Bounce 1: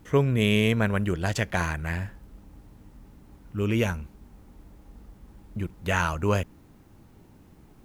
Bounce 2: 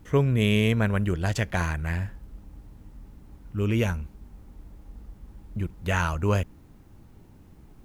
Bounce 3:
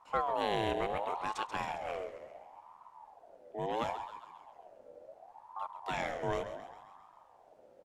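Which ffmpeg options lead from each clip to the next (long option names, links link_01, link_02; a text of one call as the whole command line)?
ffmpeg -i in.wav -af "lowshelf=frequency=100:gain=8,volume=-1.5dB" out.wav
ffmpeg -i in.wav -filter_complex "[0:a]lowpass=8800,asplit=8[link_01][link_02][link_03][link_04][link_05][link_06][link_07][link_08];[link_02]adelay=134,afreqshift=-64,volume=-10.5dB[link_09];[link_03]adelay=268,afreqshift=-128,volume=-15.2dB[link_10];[link_04]adelay=402,afreqshift=-192,volume=-20dB[link_11];[link_05]adelay=536,afreqshift=-256,volume=-24.7dB[link_12];[link_06]adelay=670,afreqshift=-320,volume=-29.4dB[link_13];[link_07]adelay=804,afreqshift=-384,volume=-34.2dB[link_14];[link_08]adelay=938,afreqshift=-448,volume=-38.9dB[link_15];[link_01][link_09][link_10][link_11][link_12][link_13][link_14][link_15]amix=inputs=8:normalize=0,aeval=exprs='val(0)*sin(2*PI*760*n/s+760*0.3/0.71*sin(2*PI*0.71*n/s))':channel_layout=same,volume=-8.5dB" out.wav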